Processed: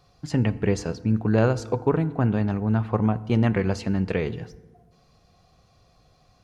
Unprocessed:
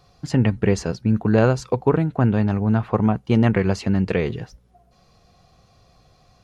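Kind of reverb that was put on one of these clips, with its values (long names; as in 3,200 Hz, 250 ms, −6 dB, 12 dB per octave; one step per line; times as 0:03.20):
feedback delay network reverb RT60 1.2 s, low-frequency decay 1.4×, high-frequency decay 0.55×, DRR 15 dB
level −4 dB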